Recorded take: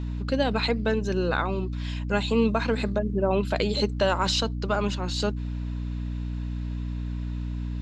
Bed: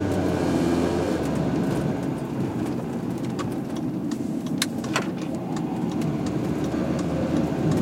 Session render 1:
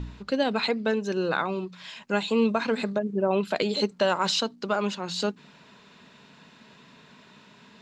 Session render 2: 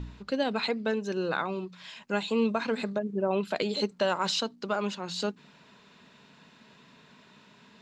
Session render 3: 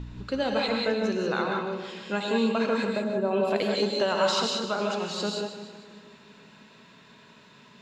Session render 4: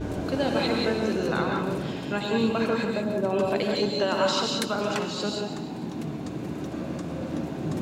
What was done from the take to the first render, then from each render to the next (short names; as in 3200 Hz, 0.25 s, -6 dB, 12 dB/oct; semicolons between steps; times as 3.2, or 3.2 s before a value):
de-hum 60 Hz, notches 5
gain -3.5 dB
on a send: split-band echo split 370 Hz, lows 0.341 s, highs 0.153 s, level -11 dB; on the sum: non-linear reverb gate 0.21 s rising, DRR 0.5 dB
add bed -7.5 dB